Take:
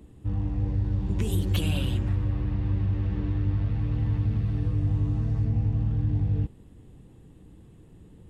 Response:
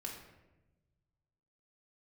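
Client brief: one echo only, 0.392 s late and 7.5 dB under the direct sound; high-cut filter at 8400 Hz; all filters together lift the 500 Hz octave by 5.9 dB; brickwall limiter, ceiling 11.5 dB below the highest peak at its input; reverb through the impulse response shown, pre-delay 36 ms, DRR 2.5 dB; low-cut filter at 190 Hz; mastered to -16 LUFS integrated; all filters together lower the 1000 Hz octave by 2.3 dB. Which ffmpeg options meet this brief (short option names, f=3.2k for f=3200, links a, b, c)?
-filter_complex "[0:a]highpass=190,lowpass=8.4k,equalizer=f=500:t=o:g=9,equalizer=f=1k:t=o:g=-7,alimiter=level_in=4dB:limit=-24dB:level=0:latency=1,volume=-4dB,aecho=1:1:392:0.422,asplit=2[a][b];[1:a]atrim=start_sample=2205,adelay=36[c];[b][c]afir=irnorm=-1:irlink=0,volume=-1dB[d];[a][d]amix=inputs=2:normalize=0,volume=17.5dB"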